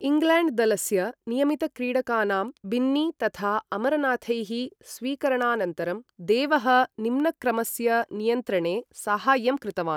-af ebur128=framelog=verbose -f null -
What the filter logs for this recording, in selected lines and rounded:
Integrated loudness:
  I:         -25.2 LUFS
  Threshold: -35.2 LUFS
Loudness range:
  LRA:         2.4 LU
  Threshold: -45.5 LUFS
  LRA low:   -26.9 LUFS
  LRA high:  -24.4 LUFS